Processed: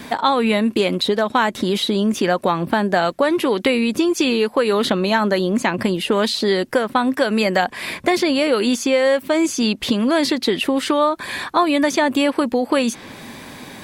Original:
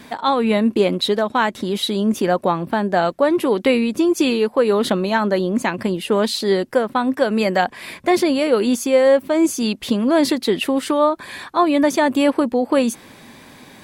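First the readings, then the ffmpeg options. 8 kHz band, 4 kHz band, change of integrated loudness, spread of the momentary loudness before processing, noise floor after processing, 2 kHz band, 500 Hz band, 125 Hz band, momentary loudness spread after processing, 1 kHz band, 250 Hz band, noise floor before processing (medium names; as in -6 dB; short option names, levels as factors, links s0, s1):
+1.0 dB, +3.0 dB, 0.0 dB, 5 LU, -39 dBFS, +3.0 dB, -1.0 dB, +0.5 dB, 3 LU, +0.5 dB, -0.5 dB, -44 dBFS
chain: -filter_complex "[0:a]acrossover=split=1400|6500[s0][s1][s2];[s0]acompressor=threshold=0.0708:ratio=4[s3];[s1]acompressor=threshold=0.0398:ratio=4[s4];[s2]acompressor=threshold=0.00501:ratio=4[s5];[s3][s4][s5]amix=inputs=3:normalize=0,volume=2.11"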